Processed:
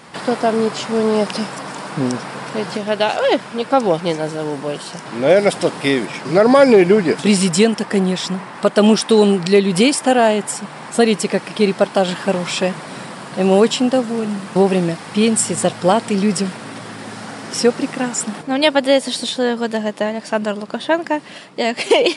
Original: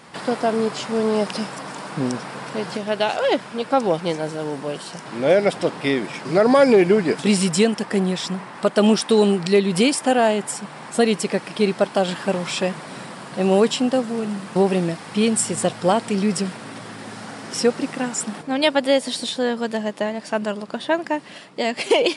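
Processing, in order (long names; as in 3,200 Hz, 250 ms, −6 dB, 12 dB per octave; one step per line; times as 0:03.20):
0:05.36–0:06.05: high-shelf EQ 7,800 Hz +11 dB
level +4 dB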